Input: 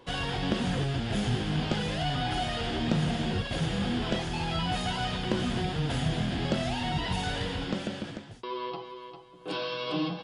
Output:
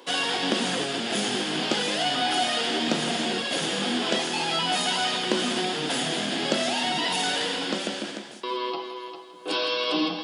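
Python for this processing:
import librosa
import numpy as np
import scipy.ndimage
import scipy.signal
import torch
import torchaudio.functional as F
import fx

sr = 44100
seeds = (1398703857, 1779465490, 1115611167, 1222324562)

y = fx.octave_divider(x, sr, octaves=2, level_db=-5.0)
y = scipy.signal.sosfilt(scipy.signal.butter(4, 240.0, 'highpass', fs=sr, output='sos'), y)
y = fx.high_shelf(y, sr, hz=3900.0, db=10.0)
y = fx.echo_feedback(y, sr, ms=164, feedback_pct=47, wet_db=-12.5)
y = y * 10.0 ** (5.0 / 20.0)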